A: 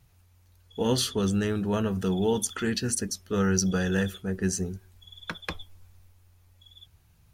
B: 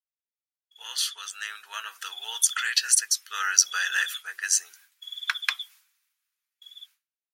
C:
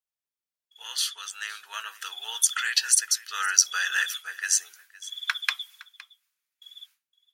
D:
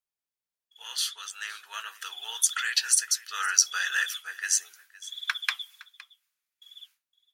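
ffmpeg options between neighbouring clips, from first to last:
ffmpeg -i in.wav -af "highpass=frequency=1400:width=0.5412,highpass=frequency=1400:width=1.3066,dynaudnorm=framelen=520:gausssize=7:maxgain=13.5dB,agate=range=-33dB:threshold=-49dB:ratio=3:detection=peak" out.wav
ffmpeg -i in.wav -af "aecho=1:1:513:0.1" out.wav
ffmpeg -i in.wav -af "flanger=delay=1.6:depth=6.7:regen=-66:speed=1.5:shape=sinusoidal,volume=2.5dB" out.wav

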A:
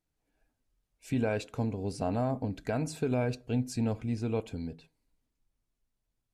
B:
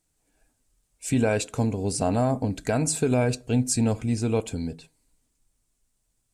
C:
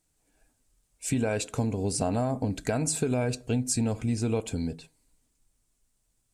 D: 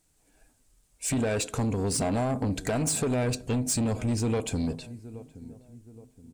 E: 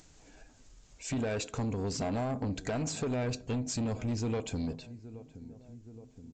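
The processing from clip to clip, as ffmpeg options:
ffmpeg -i in.wav -af "equalizer=frequency=8300:width=1.2:gain=14,volume=7dB" out.wav
ffmpeg -i in.wav -af "acompressor=threshold=-23dB:ratio=6" out.wav
ffmpeg -i in.wav -filter_complex "[0:a]asplit=2[link_01][link_02];[link_02]adelay=822,lowpass=frequency=990:poles=1,volume=-20dB,asplit=2[link_03][link_04];[link_04]adelay=822,lowpass=frequency=990:poles=1,volume=0.46,asplit=2[link_05][link_06];[link_06]adelay=822,lowpass=frequency=990:poles=1,volume=0.46[link_07];[link_01][link_03][link_05][link_07]amix=inputs=4:normalize=0,asoftclip=type=tanh:threshold=-27.5dB,volume=5dB" out.wav
ffmpeg -i in.wav -af "acompressor=mode=upward:threshold=-36dB:ratio=2.5,aresample=16000,aresample=44100,volume=-5.5dB" out.wav

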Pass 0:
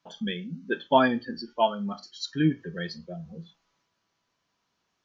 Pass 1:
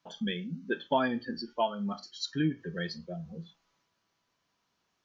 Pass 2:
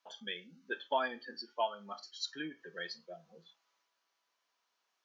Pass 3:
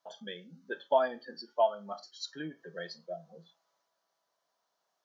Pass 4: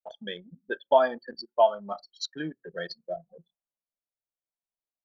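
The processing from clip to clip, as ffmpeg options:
ffmpeg -i in.wav -af "acompressor=threshold=-27dB:ratio=2,volume=-1dB" out.wav
ffmpeg -i in.wav -af "highpass=560,volume=-3dB" out.wav
ffmpeg -i in.wav -af "equalizer=frequency=160:width_type=o:width=0.67:gain=9,equalizer=frequency=630:width_type=o:width=0.67:gain=10,equalizer=frequency=2500:width_type=o:width=0.67:gain=-9" out.wav
ffmpeg -i in.wav -af "anlmdn=0.0398,volume=6dB" out.wav

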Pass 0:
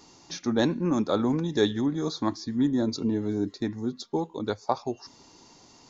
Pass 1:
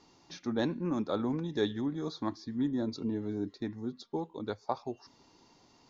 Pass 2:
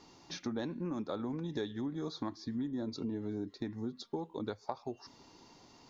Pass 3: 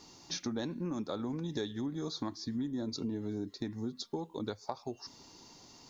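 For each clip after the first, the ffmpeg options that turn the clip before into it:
ffmpeg -i in.wav -af "lowpass=4700,volume=-7dB" out.wav
ffmpeg -i in.wav -af "acompressor=threshold=-38dB:ratio=6,volume=3.5dB" out.wav
ffmpeg -i in.wav -af "bass=frequency=250:gain=2,treble=frequency=4000:gain=10" out.wav

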